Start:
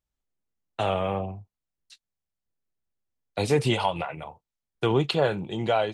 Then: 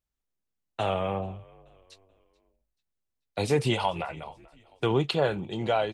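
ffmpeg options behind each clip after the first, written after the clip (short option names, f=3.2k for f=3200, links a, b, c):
-filter_complex "[0:a]asplit=4[a][b][c][d];[b]adelay=434,afreqshift=-50,volume=-24dB[e];[c]adelay=868,afreqshift=-100,volume=-32dB[f];[d]adelay=1302,afreqshift=-150,volume=-39.9dB[g];[a][e][f][g]amix=inputs=4:normalize=0,volume=-2dB"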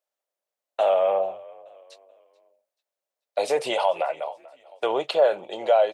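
-filter_complex "[0:a]highpass=f=590:t=q:w=4.9,asplit=2[a][b];[b]alimiter=limit=-17.5dB:level=0:latency=1,volume=3dB[c];[a][c]amix=inputs=2:normalize=0,volume=-6dB"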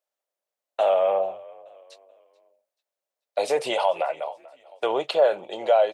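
-af anull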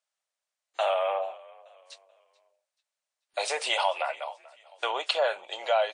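-af "highpass=1.1k,volume=3.5dB" -ar 22050 -c:a wmav2 -b:a 64k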